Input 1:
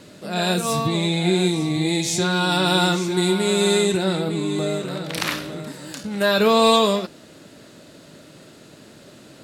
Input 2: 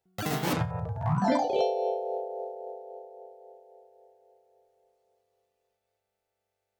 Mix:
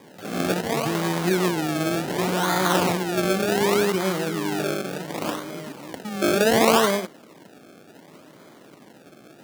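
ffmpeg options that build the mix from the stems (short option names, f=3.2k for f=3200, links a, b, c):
-filter_complex "[0:a]acrusher=samples=31:mix=1:aa=0.000001:lfo=1:lforange=31:lforate=0.68,volume=-1.5dB[a];[1:a]acompressor=threshold=-30dB:ratio=6,volume=-7dB[b];[a][b]amix=inputs=2:normalize=0,highpass=180"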